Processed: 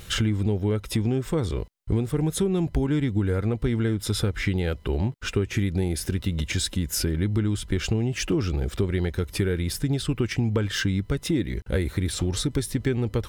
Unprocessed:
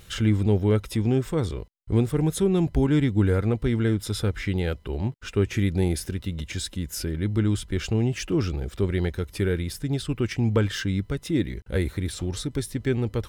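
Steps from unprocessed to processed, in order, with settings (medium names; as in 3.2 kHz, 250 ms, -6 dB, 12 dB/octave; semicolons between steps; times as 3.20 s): compression, threshold -27 dBFS, peak gain reduction 11.5 dB; trim +6.5 dB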